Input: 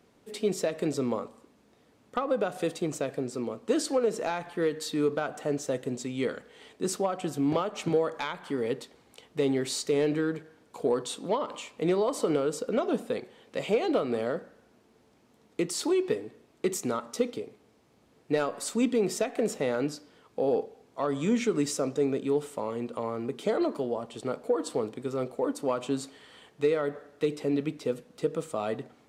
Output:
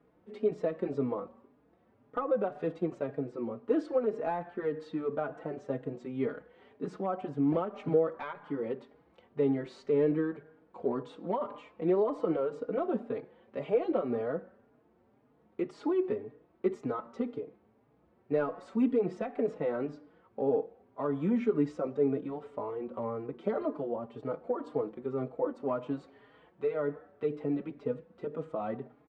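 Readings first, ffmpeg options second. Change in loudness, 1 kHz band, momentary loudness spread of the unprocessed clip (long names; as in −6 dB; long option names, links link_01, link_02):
−3.0 dB, −3.5 dB, 8 LU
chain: -filter_complex "[0:a]lowpass=1500,asplit=2[link_01][link_02];[link_02]adelay=4.4,afreqshift=1.9[link_03];[link_01][link_03]amix=inputs=2:normalize=1"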